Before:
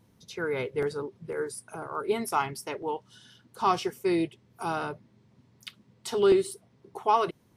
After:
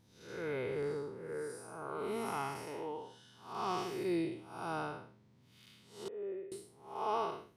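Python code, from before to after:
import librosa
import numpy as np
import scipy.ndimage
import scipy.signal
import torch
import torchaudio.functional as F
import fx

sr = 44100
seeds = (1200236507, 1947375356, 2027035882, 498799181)

y = fx.spec_blur(x, sr, span_ms=243.0)
y = fx.formant_cascade(y, sr, vowel='e', at=(6.08, 6.52))
y = F.gain(torch.from_numpy(y), -3.5).numpy()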